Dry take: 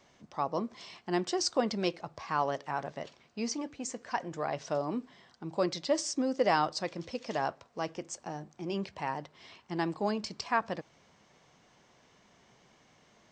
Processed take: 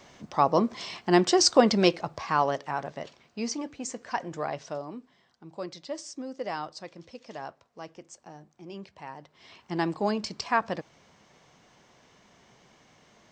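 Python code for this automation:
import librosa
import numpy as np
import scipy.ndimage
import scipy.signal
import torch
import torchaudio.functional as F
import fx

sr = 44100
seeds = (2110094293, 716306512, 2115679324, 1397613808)

y = fx.gain(x, sr, db=fx.line((1.82, 10.0), (2.82, 2.5), (4.43, 2.5), (4.98, -7.0), (9.17, -7.0), (9.63, 4.0)))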